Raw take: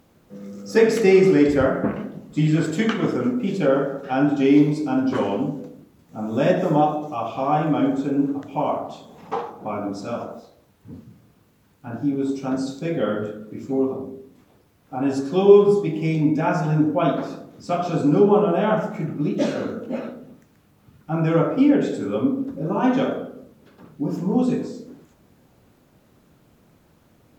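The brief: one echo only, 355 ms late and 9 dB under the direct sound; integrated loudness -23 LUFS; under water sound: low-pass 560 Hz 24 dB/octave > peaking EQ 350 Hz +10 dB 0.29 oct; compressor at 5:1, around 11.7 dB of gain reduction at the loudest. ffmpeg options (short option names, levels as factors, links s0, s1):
-af "acompressor=threshold=0.1:ratio=5,lowpass=f=560:w=0.5412,lowpass=f=560:w=1.3066,equalizer=f=350:t=o:w=0.29:g=10,aecho=1:1:355:0.355,volume=1.12"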